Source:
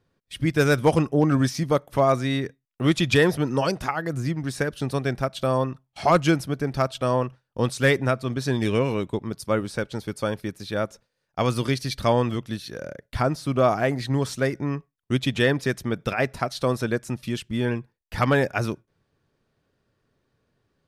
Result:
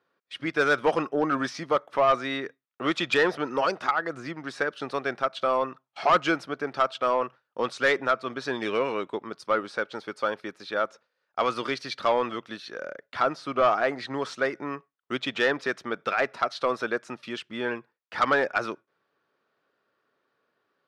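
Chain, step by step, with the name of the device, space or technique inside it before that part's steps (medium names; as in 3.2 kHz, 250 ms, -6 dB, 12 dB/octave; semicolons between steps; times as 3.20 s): intercom (band-pass 400–4100 Hz; peaking EQ 1.3 kHz +7 dB 0.51 oct; saturation -13 dBFS, distortion -15 dB)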